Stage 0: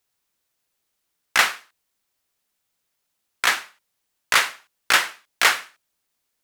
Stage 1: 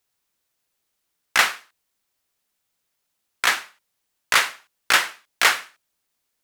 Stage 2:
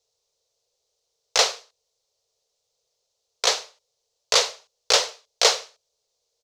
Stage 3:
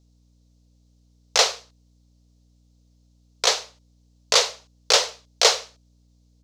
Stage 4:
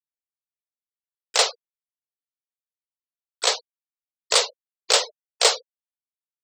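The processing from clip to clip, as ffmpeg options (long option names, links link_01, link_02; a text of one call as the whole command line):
ffmpeg -i in.wav -af anull out.wav
ffmpeg -i in.wav -af "firequalizer=gain_entry='entry(130,0);entry(180,-14);entry(300,-15);entry(450,14);entry(780,1);entry(1600,-13);entry(4100,6);entry(6200,7);entry(9300,-9);entry(15000,-16)':delay=0.05:min_phase=1" out.wav
ffmpeg -i in.wav -af "aeval=exprs='val(0)+0.00112*(sin(2*PI*60*n/s)+sin(2*PI*2*60*n/s)/2+sin(2*PI*3*60*n/s)/3+sin(2*PI*4*60*n/s)/4+sin(2*PI*5*60*n/s)/5)':channel_layout=same,volume=1dB" out.wav
ffmpeg -i in.wav -af "afftfilt=real='re*gte(hypot(re,im),0.0501)':imag='im*gte(hypot(re,im),0.0501)':win_size=1024:overlap=0.75,aexciter=amount=14.7:drive=7.6:freq=9200,acompressor=mode=upward:threshold=-32dB:ratio=2.5,volume=-1dB" out.wav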